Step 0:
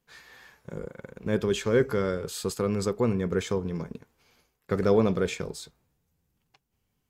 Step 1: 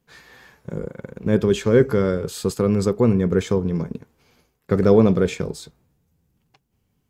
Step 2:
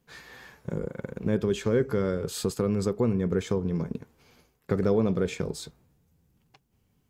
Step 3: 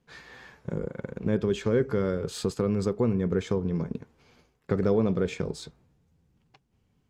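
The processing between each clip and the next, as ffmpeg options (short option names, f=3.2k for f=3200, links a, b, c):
-af "equalizer=f=160:w=0.3:g=7,volume=2.5dB"
-af "acompressor=threshold=-28dB:ratio=2"
-af "adynamicsmooth=sensitivity=3:basefreq=7.8k"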